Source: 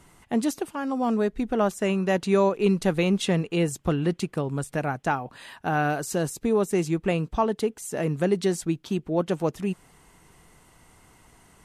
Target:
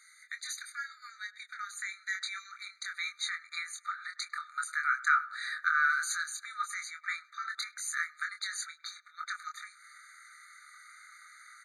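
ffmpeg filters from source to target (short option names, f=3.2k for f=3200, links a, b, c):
-filter_complex "[0:a]lowpass=6.8k,bass=f=250:g=15,treble=f=4k:g=0,asplit=2[a][b];[b]adelay=25,volume=-5.5dB[c];[a][c]amix=inputs=2:normalize=0,asplit=2[d][e];[e]adelay=101,lowpass=f=820:p=1,volume=-14.5dB,asplit=2[f][g];[g]adelay=101,lowpass=f=820:p=1,volume=0.51,asplit=2[h][i];[i]adelay=101,lowpass=f=820:p=1,volume=0.51,asplit=2[j][k];[k]adelay=101,lowpass=f=820:p=1,volume=0.51,asplit=2[l][m];[m]adelay=101,lowpass=f=820:p=1,volume=0.51[n];[d][f][h][j][l][n]amix=inputs=6:normalize=0,acompressor=threshold=-18dB:ratio=6,asetnsamples=n=441:p=0,asendcmd='2.15 equalizer g -4;3.19 equalizer g 5.5',equalizer=f=1.1k:w=1.9:g=-15,afftfilt=real='re*eq(mod(floor(b*sr/1024/1200),2),1)':imag='im*eq(mod(floor(b*sr/1024/1200),2),1)':win_size=1024:overlap=0.75,volume=7dB"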